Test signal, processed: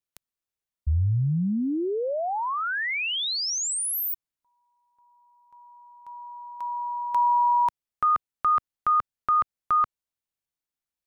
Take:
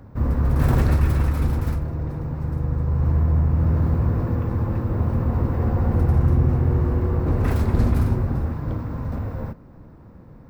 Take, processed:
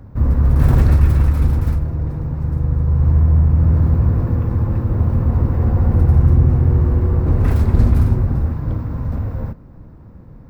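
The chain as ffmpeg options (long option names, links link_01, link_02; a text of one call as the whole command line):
ffmpeg -i in.wav -af "lowshelf=frequency=160:gain=8" out.wav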